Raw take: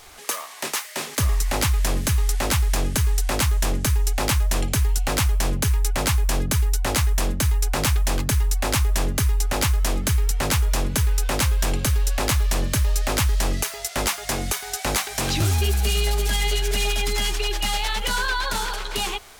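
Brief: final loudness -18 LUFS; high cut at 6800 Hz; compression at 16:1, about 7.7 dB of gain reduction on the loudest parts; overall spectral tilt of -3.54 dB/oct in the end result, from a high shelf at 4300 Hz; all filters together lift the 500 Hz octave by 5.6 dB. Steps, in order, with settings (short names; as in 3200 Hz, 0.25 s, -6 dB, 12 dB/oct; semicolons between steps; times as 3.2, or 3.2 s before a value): LPF 6800 Hz; bell 500 Hz +7 dB; high shelf 4300 Hz +4.5 dB; compressor 16:1, threshold -24 dBFS; gain +11 dB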